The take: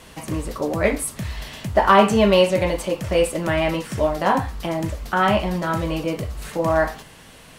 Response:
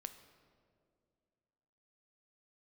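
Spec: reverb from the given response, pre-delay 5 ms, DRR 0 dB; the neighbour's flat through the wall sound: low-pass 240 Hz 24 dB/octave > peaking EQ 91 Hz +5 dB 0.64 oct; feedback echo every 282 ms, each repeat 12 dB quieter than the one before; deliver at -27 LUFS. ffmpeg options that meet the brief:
-filter_complex "[0:a]aecho=1:1:282|564|846:0.251|0.0628|0.0157,asplit=2[s0][s1];[1:a]atrim=start_sample=2205,adelay=5[s2];[s1][s2]afir=irnorm=-1:irlink=0,volume=1.58[s3];[s0][s3]amix=inputs=2:normalize=0,lowpass=f=240:w=0.5412,lowpass=f=240:w=1.3066,equalizer=f=91:t=o:w=0.64:g=5,volume=0.708"

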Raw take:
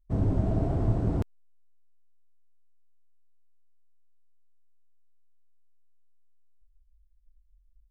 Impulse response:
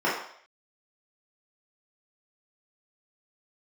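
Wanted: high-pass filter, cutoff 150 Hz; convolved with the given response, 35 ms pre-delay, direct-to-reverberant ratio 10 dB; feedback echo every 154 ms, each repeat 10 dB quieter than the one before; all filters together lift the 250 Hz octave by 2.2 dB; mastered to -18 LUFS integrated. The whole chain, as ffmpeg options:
-filter_complex "[0:a]highpass=150,equalizer=f=250:t=o:g=4,aecho=1:1:154|308|462|616:0.316|0.101|0.0324|0.0104,asplit=2[s0][s1];[1:a]atrim=start_sample=2205,adelay=35[s2];[s1][s2]afir=irnorm=-1:irlink=0,volume=0.0531[s3];[s0][s3]amix=inputs=2:normalize=0,volume=3.76"

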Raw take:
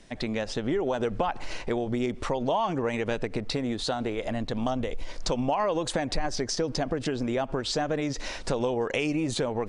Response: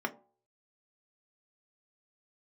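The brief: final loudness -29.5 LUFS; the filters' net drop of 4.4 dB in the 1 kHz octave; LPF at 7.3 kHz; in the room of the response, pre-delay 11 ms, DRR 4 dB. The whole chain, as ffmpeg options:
-filter_complex "[0:a]lowpass=7300,equalizer=f=1000:t=o:g=-6,asplit=2[s0][s1];[1:a]atrim=start_sample=2205,adelay=11[s2];[s1][s2]afir=irnorm=-1:irlink=0,volume=0.316[s3];[s0][s3]amix=inputs=2:normalize=0,volume=0.944"

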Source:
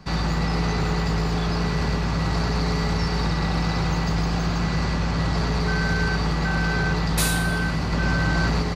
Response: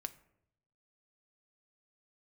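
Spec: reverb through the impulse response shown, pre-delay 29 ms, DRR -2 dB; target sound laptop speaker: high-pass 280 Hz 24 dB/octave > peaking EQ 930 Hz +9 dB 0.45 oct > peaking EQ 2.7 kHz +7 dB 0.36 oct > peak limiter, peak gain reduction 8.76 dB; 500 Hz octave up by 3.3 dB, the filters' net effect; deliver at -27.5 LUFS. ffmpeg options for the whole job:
-filter_complex "[0:a]equalizer=f=500:t=o:g=3.5,asplit=2[s0][s1];[1:a]atrim=start_sample=2205,adelay=29[s2];[s1][s2]afir=irnorm=-1:irlink=0,volume=1.68[s3];[s0][s3]amix=inputs=2:normalize=0,highpass=f=280:w=0.5412,highpass=f=280:w=1.3066,equalizer=f=930:t=o:w=0.45:g=9,equalizer=f=2700:t=o:w=0.36:g=7,volume=0.631,alimiter=limit=0.112:level=0:latency=1"

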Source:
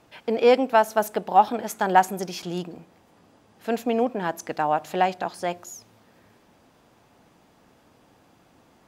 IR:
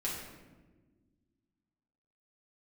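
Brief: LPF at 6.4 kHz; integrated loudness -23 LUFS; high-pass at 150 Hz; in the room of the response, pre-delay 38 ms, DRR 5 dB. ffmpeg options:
-filter_complex "[0:a]highpass=150,lowpass=6400,asplit=2[s0][s1];[1:a]atrim=start_sample=2205,adelay=38[s2];[s1][s2]afir=irnorm=-1:irlink=0,volume=0.376[s3];[s0][s3]amix=inputs=2:normalize=0,volume=0.944"

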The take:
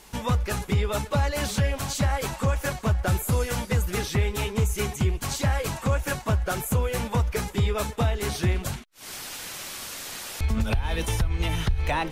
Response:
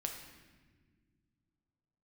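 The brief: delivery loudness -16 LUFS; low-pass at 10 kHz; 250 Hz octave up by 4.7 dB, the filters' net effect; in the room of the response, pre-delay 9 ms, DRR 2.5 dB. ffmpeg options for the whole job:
-filter_complex "[0:a]lowpass=10000,equalizer=f=250:t=o:g=6.5,asplit=2[s0][s1];[1:a]atrim=start_sample=2205,adelay=9[s2];[s1][s2]afir=irnorm=-1:irlink=0,volume=0.75[s3];[s0][s3]amix=inputs=2:normalize=0,volume=2.37"

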